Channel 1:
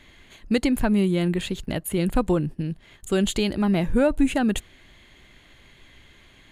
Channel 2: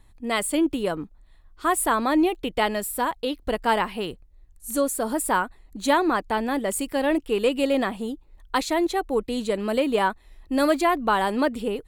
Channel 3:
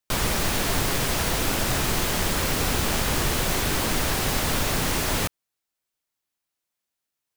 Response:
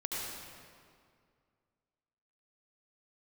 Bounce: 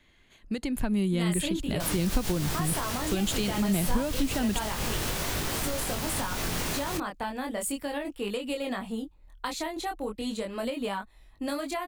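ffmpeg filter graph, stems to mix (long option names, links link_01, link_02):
-filter_complex "[0:a]alimiter=limit=-13.5dB:level=0:latency=1:release=306,dynaudnorm=framelen=280:gausssize=5:maxgain=11.5dB,volume=-11dB,asplit=2[link_01][link_02];[1:a]equalizer=frequency=390:width_type=o:width=0.36:gain=-7,adelay=900,volume=0dB[link_03];[2:a]adelay=1700,volume=-1dB[link_04];[link_02]apad=whole_len=399890[link_05];[link_04][link_05]sidechaincompress=threshold=-30dB:ratio=8:attack=47:release=103[link_06];[link_03][link_06]amix=inputs=2:normalize=0,flanger=delay=20:depth=4.8:speed=0.36,alimiter=limit=-19dB:level=0:latency=1:release=147,volume=0dB[link_07];[link_01][link_07]amix=inputs=2:normalize=0,acrossover=split=190|3000[link_08][link_09][link_10];[link_09]acompressor=threshold=-31dB:ratio=3[link_11];[link_08][link_11][link_10]amix=inputs=3:normalize=0"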